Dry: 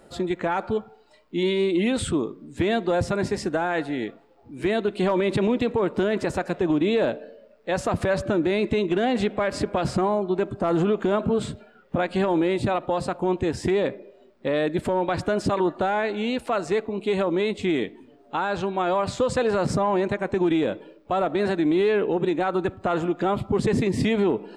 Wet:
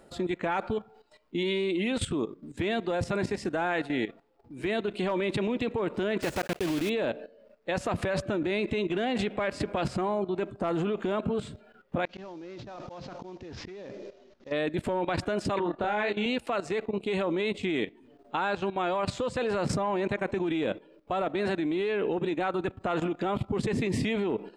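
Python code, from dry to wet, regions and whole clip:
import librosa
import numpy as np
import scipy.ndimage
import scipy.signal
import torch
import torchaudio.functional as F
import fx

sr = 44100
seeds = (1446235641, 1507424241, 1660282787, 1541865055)

y = fx.chain(x, sr, fx.block_float(bits=3),
    fx.high_shelf(hz=8900.0, db=-3.0), at=(6.22, 6.91))
y = fx.chain(y, sr, fx.cvsd(bps=32000),
    fx.auto_swell(attack_ms=340.0),
    fx.over_compress(threshold_db=-35.0, ratio=-1.0), at=(12.05, 14.52))
y = fx.chain(y, sr, fx.lowpass(hz=7000.0, slope=12),
    fx.doubler(ms=29.0, db=-5),
    fx.band_widen(depth_pct=40), at=(15.59, 16.26))
y = fx.dynamic_eq(y, sr, hz=2600.0, q=1.4, threshold_db=-44.0, ratio=4.0, max_db=5)
y = fx.level_steps(y, sr, step_db=14)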